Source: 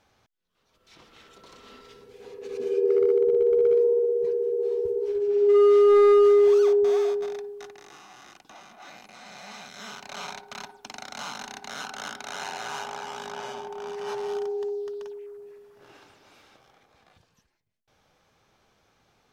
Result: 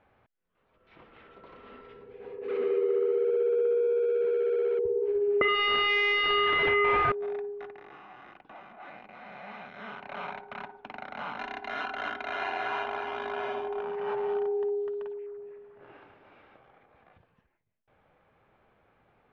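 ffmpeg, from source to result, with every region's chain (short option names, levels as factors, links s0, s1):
-filter_complex "[0:a]asettb=1/sr,asplit=3[s0][s1][s2];[s0]atrim=end=2.484[s3];[s1]atrim=start=2.48:end=4.79,asetpts=PTS-STARTPTS,afade=t=in:d=0.004:c=qsin,afade=t=out:st=2.306:d=0.004:c=qsin,aeval=exprs='val(0)+0.5*0.02*sgn(val(0))':c=same,highpass=210,lowpass=4000,highshelf=f=3000:g=8[s4];[s2]atrim=start=4.786[s5];[s3][s4]acrossfade=d=0.004:c1=hsin:c2=qsin[s6];[s6][s5]acrossfade=d=0.004:c1=qsin:c2=hsin,asettb=1/sr,asplit=3[s7][s8][s9];[s7]atrim=end=5.414[s10];[s8]atrim=start=5.41:end=7.12,asetpts=PTS-STARTPTS,afade=t=in:d=0.004:c=qsin,afade=t=out:st=1.706:d=0.004:c=qsin,highpass=220,aeval=exprs='0.316*sin(PI/2*7.94*val(0)/0.316)':c=same[s11];[s9]atrim=start=7.116[s12];[s10][s11]acrossfade=d=0.004:c1=hsin:c2=qsin[s13];[s13][s12]acrossfade=d=0.004:c1=qsin:c2=hsin,asettb=1/sr,asplit=3[s14][s15][s16];[s14]atrim=end=11.384[s17];[s15]atrim=start=11.38:end=13.81,asetpts=PTS-STARTPTS,afade=t=in:d=0.004:c=qsin,afade=t=out:st=2.426:d=0.004:c=qsin,highshelf=f=3000:g=9,aecho=1:1:2.9:0.75,atrim=end_sample=107163[s18];[s16]atrim=start=13.806[s19];[s17][s18]acrossfade=d=0.004:c1=hsin:c2=qsin[s20];[s20][s19]acrossfade=d=0.004:c1=qsin:c2=hsin,lowpass=f=2500:w=0.5412,lowpass=f=2500:w=1.3066,equalizer=f=570:t=o:w=0.77:g=2.5,acompressor=threshold=0.0631:ratio=5"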